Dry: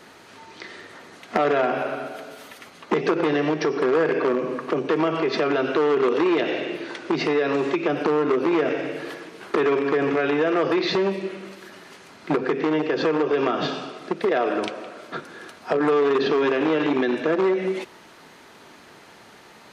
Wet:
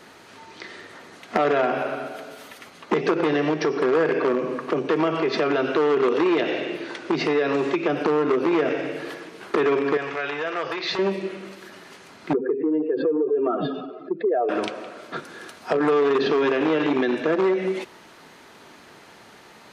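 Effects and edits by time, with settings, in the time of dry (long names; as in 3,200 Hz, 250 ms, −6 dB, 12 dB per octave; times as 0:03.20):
0:09.97–0:10.99: parametric band 250 Hz −15 dB 2.1 octaves
0:12.33–0:14.49: expanding power law on the bin magnitudes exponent 2.2
0:15.16–0:15.73: high-shelf EQ 4,500 Hz +4.5 dB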